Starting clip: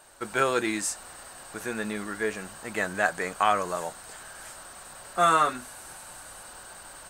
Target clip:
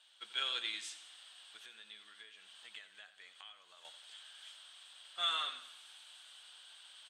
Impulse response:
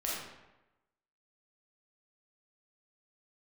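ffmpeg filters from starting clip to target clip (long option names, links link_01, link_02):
-filter_complex "[0:a]asettb=1/sr,asplit=3[link_01][link_02][link_03];[link_01]atrim=end=1.564[link_04];[link_02]atrim=start=1.56:end=3.85,asetpts=PTS-STARTPTS,afade=type=in:duration=0.004:curve=qsin,afade=type=out:start_time=2.286:duration=0.004:curve=qsin,acompressor=threshold=-36dB:ratio=16[link_05];[link_03]atrim=start=3.846[link_06];[link_04][link_05]acrossfade=duration=0.004:curve1=hsin:curve2=qsin[link_07];[link_07][link_06]acrossfade=duration=0.004:curve1=qsin:curve2=hsin,bandpass=frequency=3300:width_type=q:width=9.7:csg=0,aecho=1:1:89|178|267|356|445:0.224|0.105|0.0495|0.0232|0.0109,volume=7.5dB"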